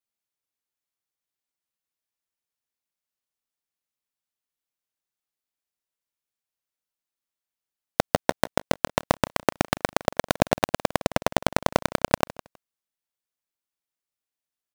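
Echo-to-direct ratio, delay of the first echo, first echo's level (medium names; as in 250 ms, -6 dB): -18.5 dB, 160 ms, -18.5 dB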